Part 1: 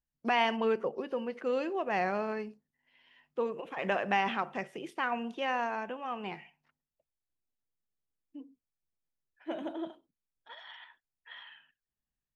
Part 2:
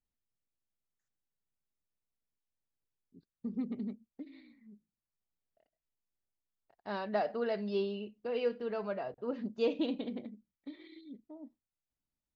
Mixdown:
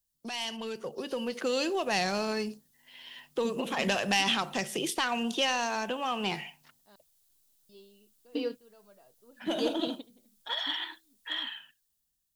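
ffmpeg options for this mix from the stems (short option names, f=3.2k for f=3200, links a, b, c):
-filter_complex "[0:a]acrossover=split=140|3000[a][b][c];[b]acompressor=threshold=-43dB:ratio=3[d];[a][d][c]amix=inputs=3:normalize=0,asoftclip=type=tanh:threshold=-30.5dB,volume=0.5dB,asplit=2[e][f];[1:a]volume=-14dB,asplit=3[g][h][i];[g]atrim=end=6.96,asetpts=PTS-STARTPTS,afade=t=out:st=6.956:d=0.004:c=hsin[j];[h]atrim=start=6.96:end=7.69,asetpts=PTS-STARTPTS,volume=0[k];[i]atrim=start=7.69,asetpts=PTS-STARTPTS,afade=t=in:d=0.004:c=hsin[l];[j][k][l]concat=n=3:v=0:a=1[m];[f]apad=whole_len=545026[n];[m][n]sidechaingate=range=-20dB:threshold=-57dB:ratio=16:detection=peak[o];[e][o]amix=inputs=2:normalize=0,dynaudnorm=f=160:g=13:m=12dB,aexciter=amount=3.6:drive=5:freq=3.2k"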